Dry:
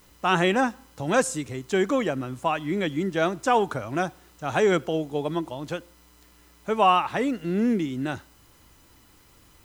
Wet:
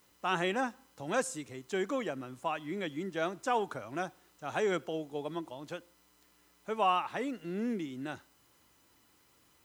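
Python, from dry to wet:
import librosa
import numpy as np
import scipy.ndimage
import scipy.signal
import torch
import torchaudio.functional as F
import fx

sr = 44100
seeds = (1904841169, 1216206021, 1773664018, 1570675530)

y = fx.highpass(x, sr, hz=210.0, slope=6)
y = F.gain(torch.from_numpy(y), -9.0).numpy()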